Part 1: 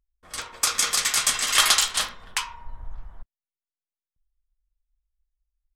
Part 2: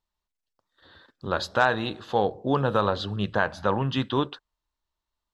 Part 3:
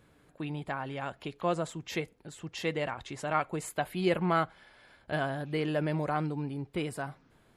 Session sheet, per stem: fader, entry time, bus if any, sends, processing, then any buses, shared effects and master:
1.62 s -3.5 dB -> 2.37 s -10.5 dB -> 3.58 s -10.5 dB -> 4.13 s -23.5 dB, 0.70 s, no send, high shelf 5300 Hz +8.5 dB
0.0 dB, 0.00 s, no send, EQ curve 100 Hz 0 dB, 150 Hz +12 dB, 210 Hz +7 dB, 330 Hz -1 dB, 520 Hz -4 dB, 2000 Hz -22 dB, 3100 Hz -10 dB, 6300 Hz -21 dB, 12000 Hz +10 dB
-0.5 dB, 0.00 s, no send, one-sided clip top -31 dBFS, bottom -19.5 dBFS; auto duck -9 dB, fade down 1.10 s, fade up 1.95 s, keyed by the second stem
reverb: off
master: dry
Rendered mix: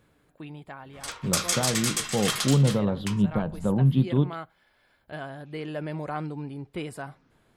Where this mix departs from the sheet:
stem 1: missing high shelf 5300 Hz +8.5 dB; stem 3: missing one-sided clip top -31 dBFS, bottom -19.5 dBFS

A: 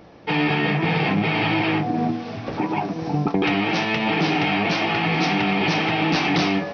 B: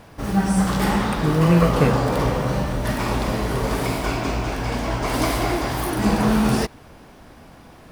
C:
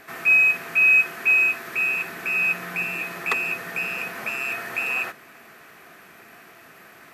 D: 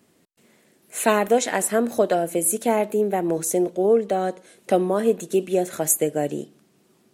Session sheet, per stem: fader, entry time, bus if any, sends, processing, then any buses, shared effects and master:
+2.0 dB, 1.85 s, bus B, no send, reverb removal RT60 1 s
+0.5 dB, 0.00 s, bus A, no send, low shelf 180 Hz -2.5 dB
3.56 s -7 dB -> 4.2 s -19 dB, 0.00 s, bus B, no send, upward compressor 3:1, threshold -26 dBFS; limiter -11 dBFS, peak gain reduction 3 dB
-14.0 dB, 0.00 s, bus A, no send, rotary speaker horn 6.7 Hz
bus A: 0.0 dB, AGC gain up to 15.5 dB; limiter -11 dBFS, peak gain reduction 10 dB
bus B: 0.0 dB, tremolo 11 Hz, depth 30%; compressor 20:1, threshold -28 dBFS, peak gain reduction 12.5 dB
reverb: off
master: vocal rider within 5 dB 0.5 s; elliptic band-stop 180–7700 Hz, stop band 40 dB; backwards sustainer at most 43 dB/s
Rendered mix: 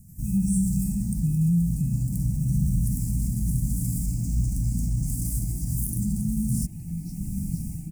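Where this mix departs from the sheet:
stem C: missing upward compressor 3:1, threshold -26 dBFS; stem D: muted; master: missing backwards sustainer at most 43 dB/s

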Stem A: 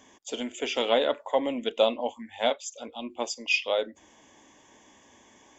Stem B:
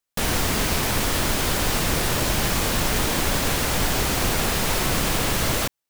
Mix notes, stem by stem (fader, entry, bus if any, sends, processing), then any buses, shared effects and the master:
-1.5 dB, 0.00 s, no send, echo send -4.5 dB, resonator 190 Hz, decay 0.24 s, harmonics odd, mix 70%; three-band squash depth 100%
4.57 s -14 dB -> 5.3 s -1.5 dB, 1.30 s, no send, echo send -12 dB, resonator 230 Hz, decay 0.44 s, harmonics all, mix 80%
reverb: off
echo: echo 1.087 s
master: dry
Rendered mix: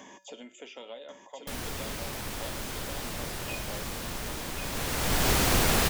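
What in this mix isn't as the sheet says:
stem A -1.5 dB -> -9.5 dB; stem B: missing resonator 230 Hz, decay 0.44 s, harmonics all, mix 80%

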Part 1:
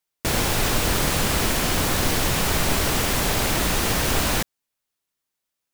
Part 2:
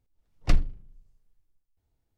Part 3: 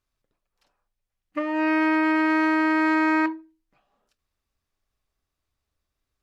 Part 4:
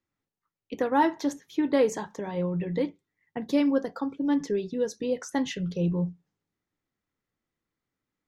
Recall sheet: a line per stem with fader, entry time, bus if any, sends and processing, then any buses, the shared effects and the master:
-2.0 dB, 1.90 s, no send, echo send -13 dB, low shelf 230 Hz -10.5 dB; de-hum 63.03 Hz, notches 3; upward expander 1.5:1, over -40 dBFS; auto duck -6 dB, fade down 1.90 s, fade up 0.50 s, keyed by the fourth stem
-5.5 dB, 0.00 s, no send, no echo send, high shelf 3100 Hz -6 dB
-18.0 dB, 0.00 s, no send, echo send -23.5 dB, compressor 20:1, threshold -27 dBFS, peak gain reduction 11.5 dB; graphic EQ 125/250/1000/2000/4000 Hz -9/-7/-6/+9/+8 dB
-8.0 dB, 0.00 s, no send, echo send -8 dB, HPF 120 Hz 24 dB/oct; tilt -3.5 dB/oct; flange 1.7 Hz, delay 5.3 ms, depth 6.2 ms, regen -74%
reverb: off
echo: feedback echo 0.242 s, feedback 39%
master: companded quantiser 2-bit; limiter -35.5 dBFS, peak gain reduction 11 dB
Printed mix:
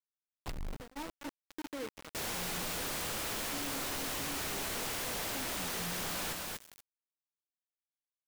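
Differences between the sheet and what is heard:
stem 2 -5.5 dB -> +3.5 dB; stem 3 -18.0 dB -> -26.0 dB; stem 4 -8.0 dB -> -17.5 dB

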